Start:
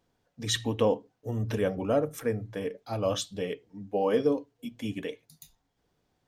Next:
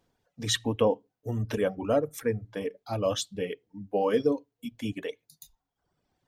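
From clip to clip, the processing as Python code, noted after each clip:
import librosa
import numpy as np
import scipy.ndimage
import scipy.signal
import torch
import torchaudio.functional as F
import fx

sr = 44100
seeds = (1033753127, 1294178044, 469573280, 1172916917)

y = fx.dereverb_blind(x, sr, rt60_s=1.1)
y = y * 10.0 ** (1.5 / 20.0)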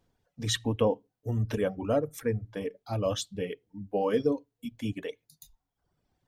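y = fx.low_shelf(x, sr, hz=140.0, db=8.0)
y = y * 10.0 ** (-2.5 / 20.0)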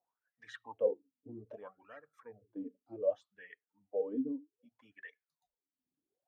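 y = fx.wah_lfo(x, sr, hz=0.64, low_hz=250.0, high_hz=1800.0, q=14.0)
y = y * 10.0 ** (3.5 / 20.0)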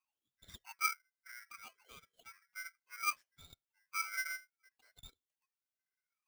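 y = x * np.sign(np.sin(2.0 * np.pi * 1800.0 * np.arange(len(x)) / sr))
y = y * 10.0 ** (-4.5 / 20.0)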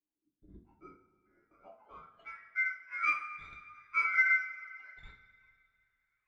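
y = fx.filter_sweep_lowpass(x, sr, from_hz=310.0, to_hz=1900.0, start_s=1.3, end_s=2.26, q=4.5)
y = fx.rev_double_slope(y, sr, seeds[0], early_s=0.34, late_s=2.4, knee_db=-18, drr_db=-2.0)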